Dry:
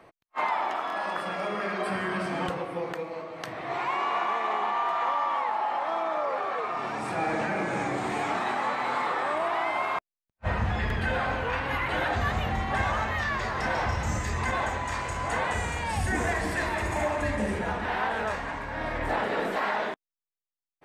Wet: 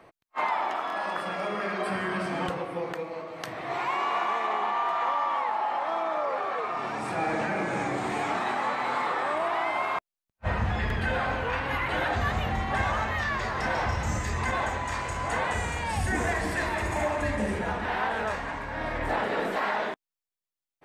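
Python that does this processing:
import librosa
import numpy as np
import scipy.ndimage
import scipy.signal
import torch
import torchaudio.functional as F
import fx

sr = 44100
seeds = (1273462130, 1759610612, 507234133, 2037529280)

y = fx.high_shelf(x, sr, hz=6300.0, db=5.0, at=(3.27, 4.46))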